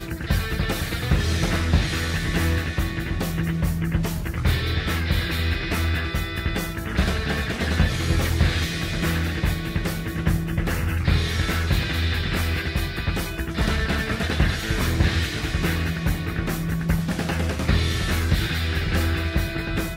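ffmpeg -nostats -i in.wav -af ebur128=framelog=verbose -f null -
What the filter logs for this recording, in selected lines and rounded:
Integrated loudness:
  I:         -24.1 LUFS
  Threshold: -34.1 LUFS
Loudness range:
  LRA:         0.8 LU
  Threshold: -44.1 LUFS
  LRA low:   -24.6 LUFS
  LRA high:  -23.8 LUFS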